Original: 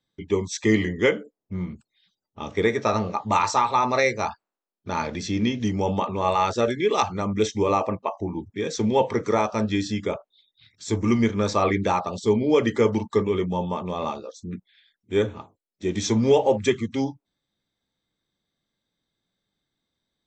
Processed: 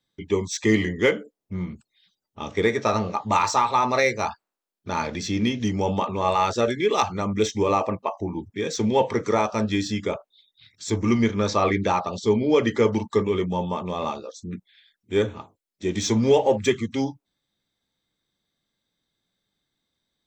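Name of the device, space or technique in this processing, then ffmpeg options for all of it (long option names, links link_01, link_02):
exciter from parts: -filter_complex "[0:a]asplit=2[link_01][link_02];[link_02]highpass=frequency=2000:poles=1,asoftclip=type=tanh:threshold=-32.5dB,volume=-6.5dB[link_03];[link_01][link_03]amix=inputs=2:normalize=0,asettb=1/sr,asplit=3[link_04][link_05][link_06];[link_04]atrim=end=10.904[link_07];[link_05]atrim=start=10.9:end=12.95,asetpts=PTS-STARTPTS,afade=type=in:duration=0.004:curve=qsin,afade=type=out:start_time=2.046:duration=0.004:curve=qsin,lowpass=frequency=7000:width=0.5412,lowpass=frequency=7000:width=1.3066[link_08];[link_06]atrim=start=12.946[link_09];[link_07][link_08]acrossfade=duration=0.004:curve1=hsin:curve2=qsin[link_10];[link_10][link_09]acrossfade=duration=0.004:curve1=qsin:curve2=hsin"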